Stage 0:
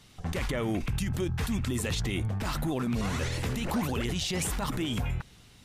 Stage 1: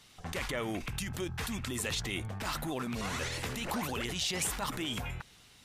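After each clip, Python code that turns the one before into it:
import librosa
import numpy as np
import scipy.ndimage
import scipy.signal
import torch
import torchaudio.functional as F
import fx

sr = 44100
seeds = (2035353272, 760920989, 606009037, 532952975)

y = fx.low_shelf(x, sr, hz=400.0, db=-10.0)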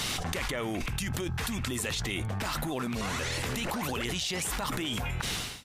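y = fx.fade_out_tail(x, sr, length_s=1.47)
y = fx.env_flatten(y, sr, amount_pct=100)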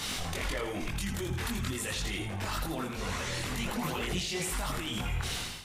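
y = fx.echo_feedback(x, sr, ms=82, feedback_pct=43, wet_db=-7.5)
y = fx.chorus_voices(y, sr, voices=4, hz=0.93, base_ms=22, depth_ms=3.0, mix_pct=50)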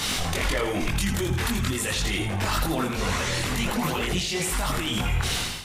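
y = fx.rider(x, sr, range_db=10, speed_s=0.5)
y = y * librosa.db_to_amplitude(8.0)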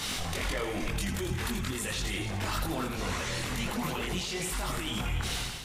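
y = x + 10.0 ** (-11.5 / 20.0) * np.pad(x, (int(287 * sr / 1000.0), 0))[:len(x)]
y = y * librosa.db_to_amplitude(-7.0)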